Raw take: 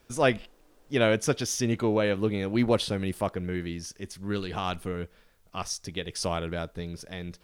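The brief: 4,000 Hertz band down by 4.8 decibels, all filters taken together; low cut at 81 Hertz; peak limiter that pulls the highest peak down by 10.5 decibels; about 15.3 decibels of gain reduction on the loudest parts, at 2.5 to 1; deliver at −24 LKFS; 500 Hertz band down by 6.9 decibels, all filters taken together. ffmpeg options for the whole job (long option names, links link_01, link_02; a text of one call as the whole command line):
ffmpeg -i in.wav -af "highpass=81,equalizer=frequency=500:width_type=o:gain=-8.5,equalizer=frequency=4000:width_type=o:gain=-6.5,acompressor=threshold=-46dB:ratio=2.5,volume=25dB,alimiter=limit=-13.5dB:level=0:latency=1" out.wav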